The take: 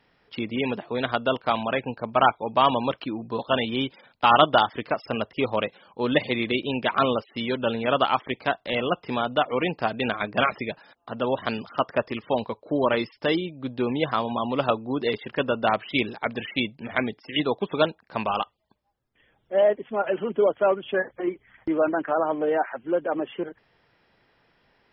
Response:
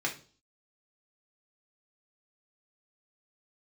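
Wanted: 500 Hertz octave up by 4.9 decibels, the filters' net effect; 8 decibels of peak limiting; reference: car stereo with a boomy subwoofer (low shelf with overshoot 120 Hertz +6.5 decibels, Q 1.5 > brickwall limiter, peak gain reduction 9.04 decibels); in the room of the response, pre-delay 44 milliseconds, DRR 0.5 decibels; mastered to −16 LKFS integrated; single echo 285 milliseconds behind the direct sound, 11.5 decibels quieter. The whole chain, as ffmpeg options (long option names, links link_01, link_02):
-filter_complex "[0:a]equalizer=frequency=500:width_type=o:gain=6.5,alimiter=limit=-8.5dB:level=0:latency=1,aecho=1:1:285:0.266,asplit=2[link_01][link_02];[1:a]atrim=start_sample=2205,adelay=44[link_03];[link_02][link_03]afir=irnorm=-1:irlink=0,volume=-7dB[link_04];[link_01][link_04]amix=inputs=2:normalize=0,lowshelf=frequency=120:width_type=q:width=1.5:gain=6.5,volume=7.5dB,alimiter=limit=-5.5dB:level=0:latency=1"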